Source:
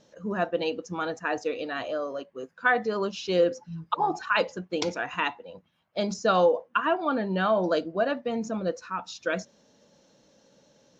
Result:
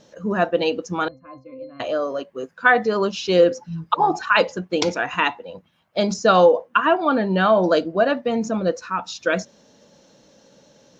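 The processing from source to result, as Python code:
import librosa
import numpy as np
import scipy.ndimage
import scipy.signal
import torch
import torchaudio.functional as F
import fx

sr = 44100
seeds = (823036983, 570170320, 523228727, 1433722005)

y = fx.octave_resonator(x, sr, note='C', decay_s=0.23, at=(1.08, 1.8))
y = y * librosa.db_to_amplitude(7.5)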